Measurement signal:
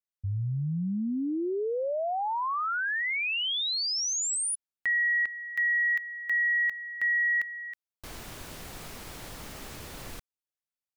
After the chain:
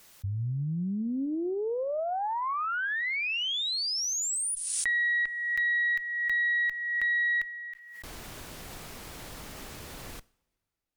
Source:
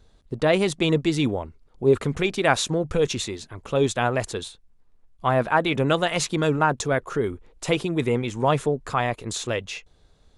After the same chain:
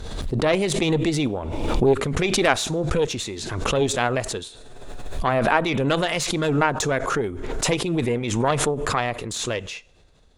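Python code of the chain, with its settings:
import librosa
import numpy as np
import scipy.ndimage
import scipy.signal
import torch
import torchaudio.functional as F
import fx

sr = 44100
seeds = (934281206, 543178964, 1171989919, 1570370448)

y = fx.rev_double_slope(x, sr, seeds[0], early_s=0.6, late_s=2.9, knee_db=-22, drr_db=20.0)
y = fx.cheby_harmonics(y, sr, harmonics=(6,), levels_db=(-18,), full_scale_db=2.0)
y = fx.pre_swell(y, sr, db_per_s=34.0)
y = y * 10.0 ** (-1.0 / 20.0)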